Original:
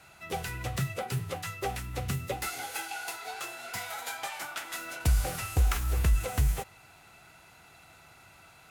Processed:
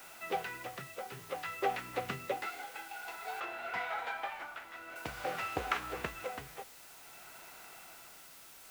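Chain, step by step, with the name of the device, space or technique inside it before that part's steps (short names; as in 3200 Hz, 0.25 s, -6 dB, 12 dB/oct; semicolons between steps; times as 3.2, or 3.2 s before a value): shortwave radio (BPF 330–2700 Hz; tremolo 0.53 Hz, depth 69%; white noise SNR 14 dB); 3.4–4.96 tone controls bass +2 dB, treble -10 dB; gain +3 dB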